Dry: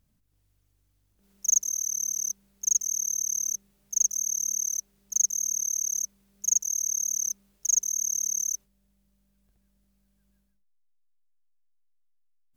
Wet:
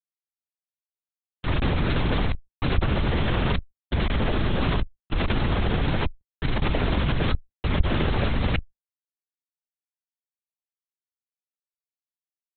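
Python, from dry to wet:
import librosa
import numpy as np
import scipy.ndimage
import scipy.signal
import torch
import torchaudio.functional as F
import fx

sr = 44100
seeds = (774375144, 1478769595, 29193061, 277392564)

y = fx.low_shelf(x, sr, hz=480.0, db=-6.5)
y = fx.schmitt(y, sr, flips_db=-36.5)
y = fx.lpc_vocoder(y, sr, seeds[0], excitation='whisper', order=8)
y = fx.env_flatten(y, sr, amount_pct=50)
y = y * 10.0 ** (7.0 / 20.0)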